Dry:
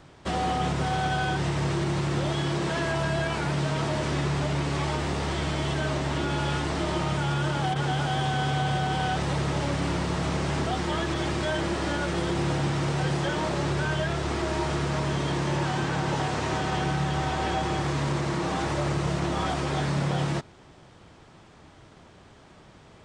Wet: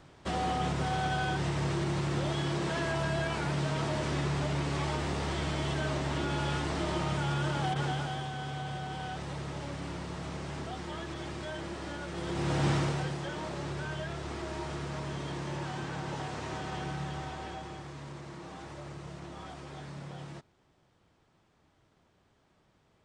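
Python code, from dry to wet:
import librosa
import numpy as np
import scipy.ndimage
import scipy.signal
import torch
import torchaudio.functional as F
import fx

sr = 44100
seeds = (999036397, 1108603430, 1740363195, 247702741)

y = fx.gain(x, sr, db=fx.line((7.83, -4.5), (8.3, -11.5), (12.1, -11.5), (12.71, 0.0), (13.16, -10.0), (17.05, -10.0), (17.9, -17.0)))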